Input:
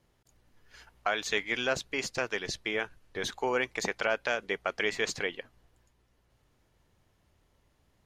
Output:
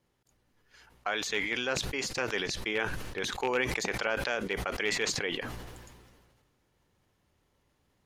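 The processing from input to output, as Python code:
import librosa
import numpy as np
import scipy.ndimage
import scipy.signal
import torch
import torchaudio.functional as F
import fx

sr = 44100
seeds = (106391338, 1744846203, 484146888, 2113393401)

y = fx.rattle_buzz(x, sr, strikes_db=-37.0, level_db=-22.0)
y = fx.low_shelf(y, sr, hz=97.0, db=-10.0)
y = fx.rider(y, sr, range_db=10, speed_s=2.0)
y = fx.low_shelf(y, sr, hz=340.0, db=3.0)
y = fx.notch(y, sr, hz=650.0, q=13.0)
y = fx.sustainer(y, sr, db_per_s=33.0)
y = F.gain(torch.from_numpy(y), -2.0).numpy()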